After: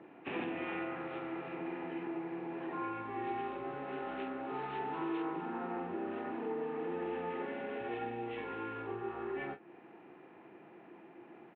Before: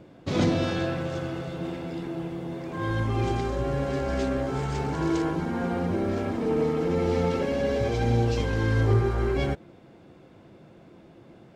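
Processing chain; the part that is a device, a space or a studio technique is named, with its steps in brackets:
high-frequency loss of the air 65 metres
double-tracking delay 34 ms −13 dB
hearing aid with frequency lowering (hearing-aid frequency compression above 1,100 Hz 1.5 to 1; downward compressor 3 to 1, threshold −34 dBFS, peak gain reduction 13 dB; loudspeaker in its box 330–5,700 Hz, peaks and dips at 350 Hz +4 dB, 560 Hz −9 dB, 840 Hz +6 dB, 1,800 Hz +4 dB, 2,600 Hz +8 dB, 4,500 Hz −8 dB)
level −1.5 dB

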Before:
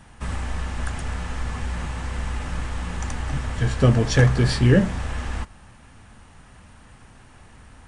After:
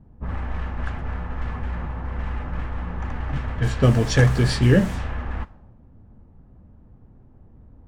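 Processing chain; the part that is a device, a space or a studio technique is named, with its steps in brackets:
cassette deck with a dynamic noise filter (white noise bed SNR 28 dB; low-pass that shuts in the quiet parts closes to 340 Hz, open at −16 dBFS)

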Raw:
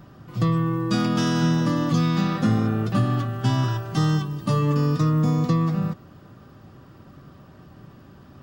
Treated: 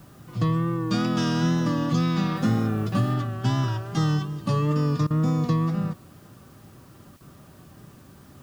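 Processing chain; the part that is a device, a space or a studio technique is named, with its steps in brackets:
worn cassette (low-pass filter 9,600 Hz; tape wow and flutter; tape dropouts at 0:05.07/0:07.17, 34 ms −21 dB; white noise bed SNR 35 dB)
0:02.36–0:03.14: high-shelf EQ 8,600 Hz +7 dB
level −2 dB

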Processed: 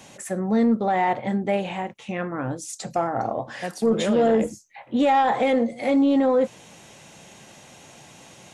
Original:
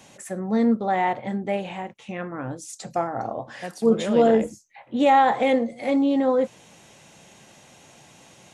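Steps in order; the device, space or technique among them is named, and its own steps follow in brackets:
soft clipper into limiter (soft clipping −10 dBFS, distortion −22 dB; brickwall limiter −16.5 dBFS, peak gain reduction 5 dB)
level +3.5 dB

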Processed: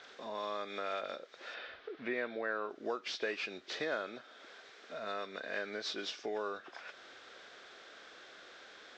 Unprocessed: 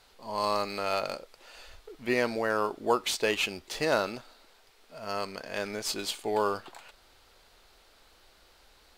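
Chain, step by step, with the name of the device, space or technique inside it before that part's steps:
0:01.54–0:02.70: low-pass filter 5,100 Hz 12 dB per octave
hearing aid with frequency lowering (hearing-aid frequency compression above 2,300 Hz 1.5 to 1; downward compressor 2.5 to 1, threshold −50 dBFS, peak gain reduction 19.5 dB; loudspeaker in its box 270–5,900 Hz, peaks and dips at 900 Hz −9 dB, 1,600 Hz +6 dB, 2,900 Hz −5 dB)
level +8 dB

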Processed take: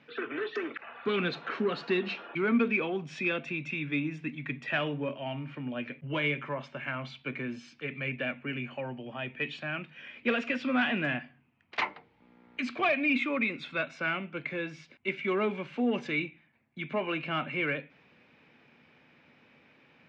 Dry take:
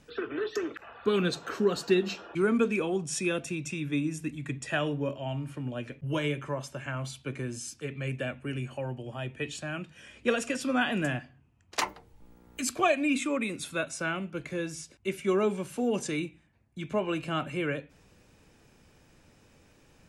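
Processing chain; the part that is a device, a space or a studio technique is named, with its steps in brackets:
overdrive pedal into a guitar cabinet (mid-hump overdrive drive 15 dB, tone 7,200 Hz, clips at −11.5 dBFS; loudspeaker in its box 89–3,700 Hz, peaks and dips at 150 Hz +7 dB, 240 Hz +9 dB, 2,200 Hz +7 dB)
level −7.5 dB

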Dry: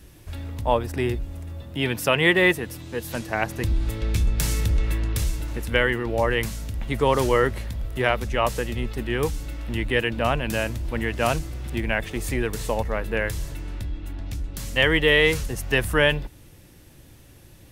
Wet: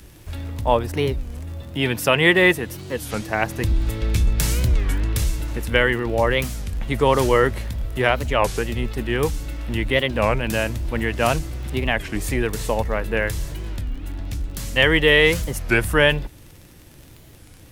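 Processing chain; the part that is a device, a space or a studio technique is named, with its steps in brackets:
warped LP (wow of a warped record 33 1/3 rpm, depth 250 cents; surface crackle 38 per second −36 dBFS; pink noise bed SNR 42 dB)
level +3 dB

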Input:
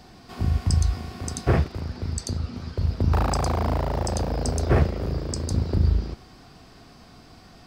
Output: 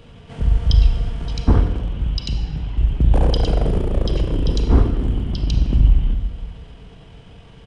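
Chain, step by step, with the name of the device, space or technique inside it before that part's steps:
monster voice (pitch shifter −8 semitones; low-shelf EQ 220 Hz +6 dB; convolution reverb RT60 1.2 s, pre-delay 32 ms, DRR 7 dB)
level +2 dB

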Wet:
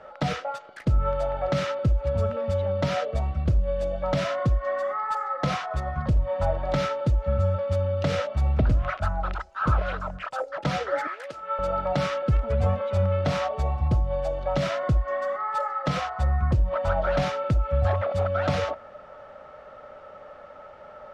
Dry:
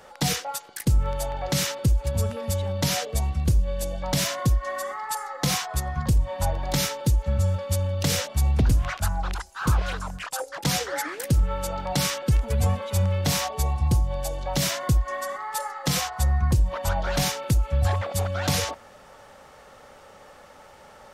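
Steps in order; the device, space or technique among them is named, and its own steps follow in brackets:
inside a cardboard box (low-pass filter 2,600 Hz 12 dB per octave; hollow resonant body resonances 610/1,300 Hz, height 12 dB, ringing for 35 ms)
0:11.07–0:11.59: high-pass filter 750 Hz 12 dB per octave
level −1.5 dB

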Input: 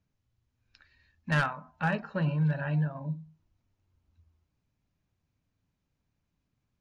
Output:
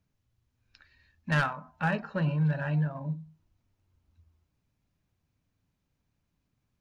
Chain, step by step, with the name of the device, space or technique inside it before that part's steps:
parallel distortion (in parallel at −14 dB: hard clipping −36.5 dBFS, distortion −4 dB)

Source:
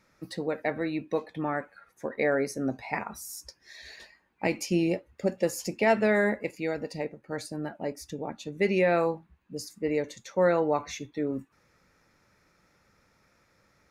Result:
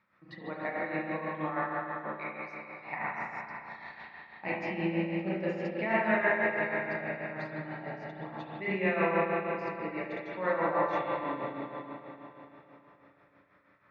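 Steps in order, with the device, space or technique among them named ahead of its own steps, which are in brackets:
0:02.09–0:02.80: elliptic high-pass filter 2,300 Hz
combo amplifier with spring reverb and tremolo (spring reverb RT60 3.8 s, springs 32/36 ms, chirp 45 ms, DRR −7.5 dB; amplitude tremolo 6.2 Hz, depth 57%; loudspeaker in its box 110–3,600 Hz, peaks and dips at 270 Hz −8 dB, 460 Hz −9 dB, 1,100 Hz +8 dB, 1,900 Hz +4 dB)
level −7 dB

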